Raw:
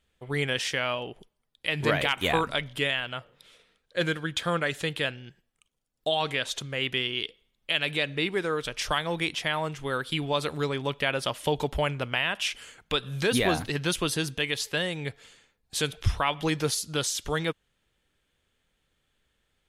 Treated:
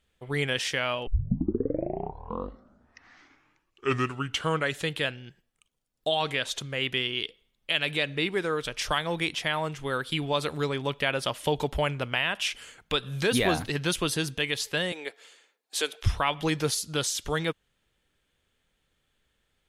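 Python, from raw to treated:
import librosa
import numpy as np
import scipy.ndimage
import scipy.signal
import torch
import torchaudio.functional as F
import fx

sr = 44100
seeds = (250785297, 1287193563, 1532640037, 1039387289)

y = fx.highpass(x, sr, hz=330.0, slope=24, at=(14.92, 16.03))
y = fx.edit(y, sr, fx.tape_start(start_s=1.07, length_s=3.7), tone=tone)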